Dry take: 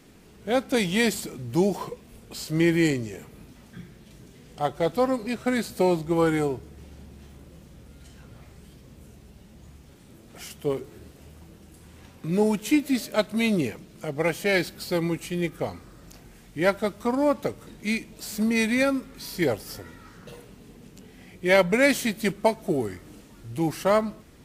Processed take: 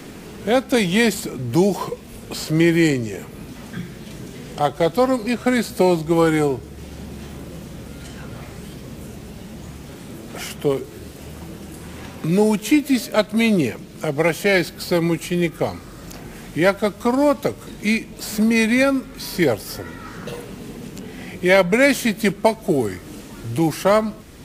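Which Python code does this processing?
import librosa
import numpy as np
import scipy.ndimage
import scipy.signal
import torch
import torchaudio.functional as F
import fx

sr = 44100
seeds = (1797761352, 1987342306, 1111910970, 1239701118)

y = fx.band_squash(x, sr, depth_pct=40)
y = y * 10.0 ** (6.5 / 20.0)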